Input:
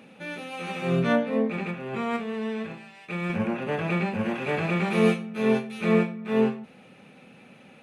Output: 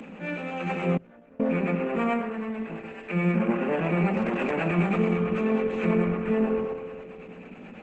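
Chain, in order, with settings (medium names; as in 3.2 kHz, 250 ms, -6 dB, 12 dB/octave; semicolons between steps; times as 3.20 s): spring tank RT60 2.2 s, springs 57 ms, chirp 50 ms, DRR 8 dB; 2.19–2.96 s: compression 8:1, threshold -33 dBFS, peak gain reduction 6 dB; high-order bell 4.6 kHz -11 dB 1.1 oct; peak limiter -20.5 dBFS, peak gain reduction 11 dB; harmonic tremolo 9.2 Hz, depth 50%, crossover 450 Hz; bass shelf 230 Hz +6 dB; upward compressor, threshold -40 dBFS; steep high-pass 160 Hz 96 dB/octave; on a send: band-passed feedback delay 124 ms, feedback 54%, band-pass 730 Hz, level -7 dB; 0.97–1.40 s: on the sum: inverted gate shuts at -26 dBFS, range -27 dB; 4.08–4.51 s: hard clipper -23.5 dBFS, distortion -34 dB; trim +4.5 dB; Opus 12 kbps 48 kHz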